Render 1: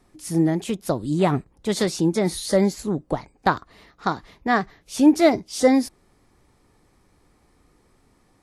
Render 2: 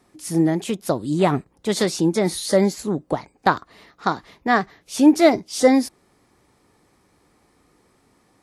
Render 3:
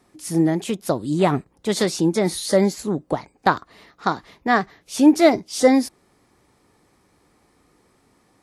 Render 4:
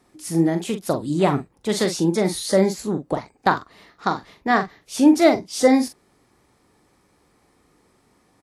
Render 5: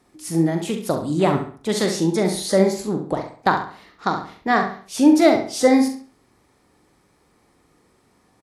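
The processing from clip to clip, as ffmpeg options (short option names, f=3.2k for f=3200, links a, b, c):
-af "highpass=f=150:p=1,volume=2.5dB"
-af anull
-filter_complex "[0:a]asplit=2[a][b];[b]adelay=42,volume=-8.5dB[c];[a][c]amix=inputs=2:normalize=0,volume=-1dB"
-filter_complex "[0:a]asplit=2[a][b];[b]adelay=68,lowpass=f=4.9k:p=1,volume=-7.5dB,asplit=2[c][d];[d]adelay=68,lowpass=f=4.9k:p=1,volume=0.37,asplit=2[e][f];[f]adelay=68,lowpass=f=4.9k:p=1,volume=0.37,asplit=2[g][h];[h]adelay=68,lowpass=f=4.9k:p=1,volume=0.37[i];[a][c][e][g][i]amix=inputs=5:normalize=0"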